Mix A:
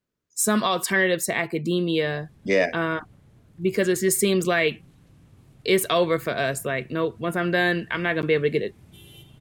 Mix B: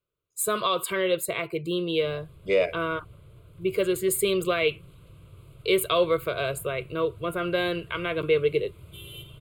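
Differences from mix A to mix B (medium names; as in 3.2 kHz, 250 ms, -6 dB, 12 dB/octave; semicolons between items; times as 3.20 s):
background +7.0 dB; master: add static phaser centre 1.2 kHz, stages 8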